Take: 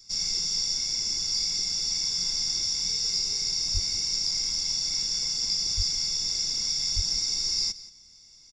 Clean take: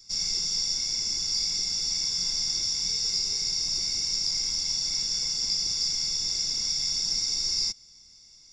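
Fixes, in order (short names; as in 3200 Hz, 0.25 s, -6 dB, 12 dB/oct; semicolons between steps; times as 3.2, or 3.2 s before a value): 3.73–3.85 HPF 140 Hz 24 dB/oct; 5.76–5.88 HPF 140 Hz 24 dB/oct; 6.95–7.07 HPF 140 Hz 24 dB/oct; inverse comb 0.175 s -17.5 dB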